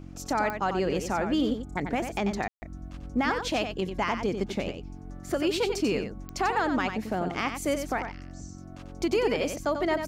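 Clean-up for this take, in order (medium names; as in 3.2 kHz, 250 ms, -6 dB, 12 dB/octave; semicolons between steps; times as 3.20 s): de-click; de-hum 45.5 Hz, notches 7; room tone fill 2.48–2.62 s; inverse comb 92 ms -7.5 dB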